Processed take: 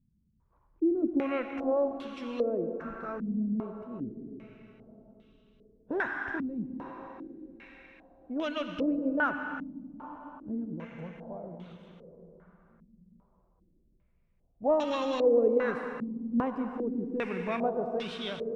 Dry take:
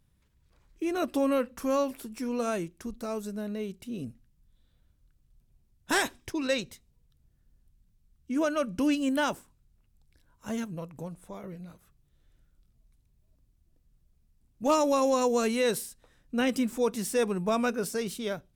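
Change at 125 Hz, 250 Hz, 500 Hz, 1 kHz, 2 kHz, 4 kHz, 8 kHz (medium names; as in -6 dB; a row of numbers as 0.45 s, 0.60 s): -2.0 dB, -1.5 dB, -0.5 dB, -3.5 dB, -1.0 dB, -6.5 dB, under -20 dB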